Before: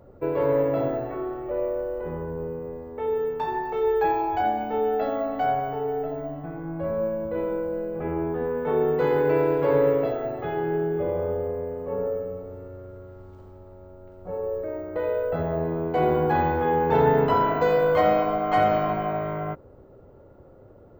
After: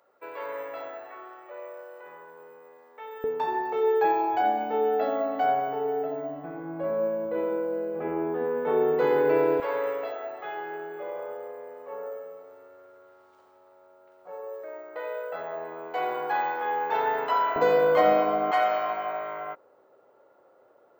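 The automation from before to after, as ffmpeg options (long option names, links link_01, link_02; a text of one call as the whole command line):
ffmpeg -i in.wav -af "asetnsamples=nb_out_samples=441:pad=0,asendcmd='3.24 highpass f 270;9.6 highpass f 830;17.56 highpass f 250;18.51 highpass f 730',highpass=1200" out.wav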